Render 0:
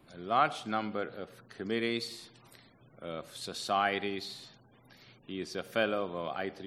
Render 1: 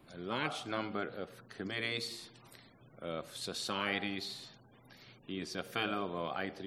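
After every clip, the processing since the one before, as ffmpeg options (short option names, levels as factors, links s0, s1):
-af "afftfilt=real='re*lt(hypot(re,im),0.126)':imag='im*lt(hypot(re,im),0.126)':win_size=1024:overlap=0.75"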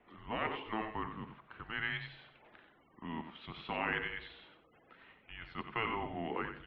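-filter_complex "[0:a]asplit=2[s0][s1];[s1]aecho=0:1:90:0.376[s2];[s0][s2]amix=inputs=2:normalize=0,highpass=f=520:t=q:w=0.5412,highpass=f=520:t=q:w=1.307,lowpass=f=3100:t=q:w=0.5176,lowpass=f=3100:t=q:w=0.7071,lowpass=f=3100:t=q:w=1.932,afreqshift=-330,volume=1.12"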